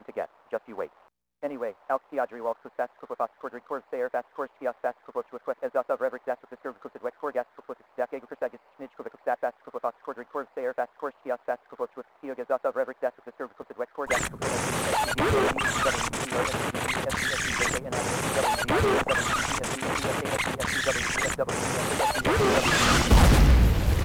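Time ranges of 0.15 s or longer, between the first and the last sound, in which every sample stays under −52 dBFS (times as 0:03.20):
0:01.08–0:01.43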